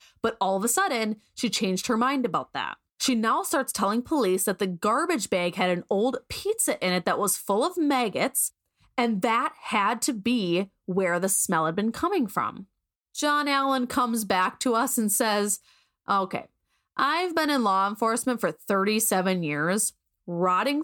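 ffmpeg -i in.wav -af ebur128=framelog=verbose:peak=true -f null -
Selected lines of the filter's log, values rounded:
Integrated loudness:
  I:         -25.3 LUFS
  Threshold: -35.5 LUFS
Loudness range:
  LRA:         1.2 LU
  Threshold: -45.5 LUFS
  LRA low:   -26.1 LUFS
  LRA high:  -24.9 LUFS
True peak:
  Peak:       -9.0 dBFS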